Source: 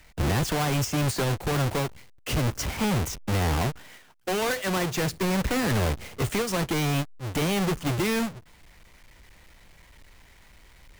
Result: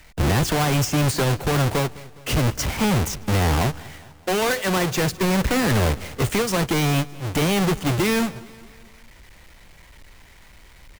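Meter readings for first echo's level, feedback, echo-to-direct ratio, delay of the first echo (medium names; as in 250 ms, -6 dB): -21.0 dB, 54%, -19.5 dB, 206 ms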